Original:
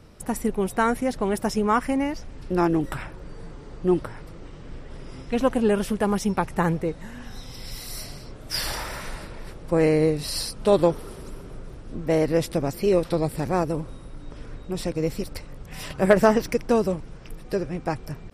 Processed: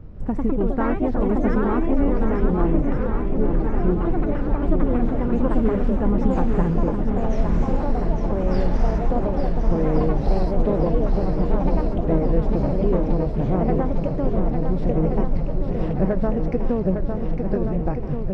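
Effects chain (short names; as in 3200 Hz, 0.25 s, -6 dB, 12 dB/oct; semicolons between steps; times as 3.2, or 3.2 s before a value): tilt -3 dB/oct; compressor, threshold -18 dBFS, peak gain reduction 11 dB; echoes that change speed 0.145 s, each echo +3 st, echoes 3; tape spacing loss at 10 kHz 25 dB; on a send: swung echo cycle 1.426 s, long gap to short 1.5:1, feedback 59%, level -6 dB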